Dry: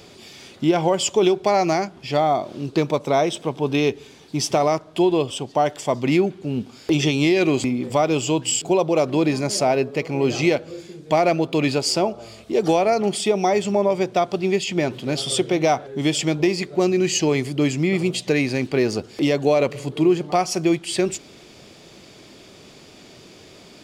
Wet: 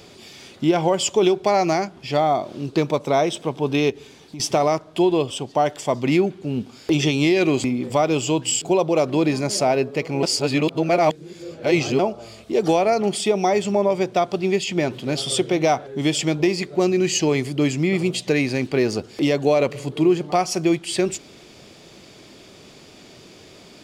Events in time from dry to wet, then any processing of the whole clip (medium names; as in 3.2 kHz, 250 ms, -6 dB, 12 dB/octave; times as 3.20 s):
3.90–4.40 s: compression 4:1, threshold -33 dBFS
10.23–11.99 s: reverse